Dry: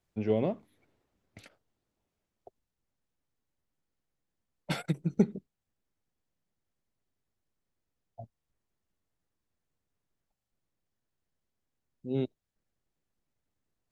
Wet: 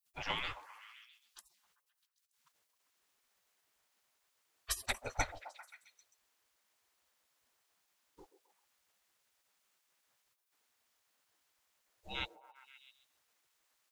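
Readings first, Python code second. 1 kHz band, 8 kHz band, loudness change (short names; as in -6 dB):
+2.5 dB, +11.0 dB, -8.0 dB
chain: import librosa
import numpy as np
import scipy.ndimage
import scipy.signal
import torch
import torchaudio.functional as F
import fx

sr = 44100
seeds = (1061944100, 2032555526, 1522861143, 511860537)

y = fx.spec_gate(x, sr, threshold_db=-30, keep='weak')
y = fx.low_shelf(y, sr, hz=160.0, db=8.0)
y = fx.echo_stepped(y, sr, ms=132, hz=490.0, octaves=0.7, feedback_pct=70, wet_db=-8.5)
y = y * librosa.db_to_amplitude(14.5)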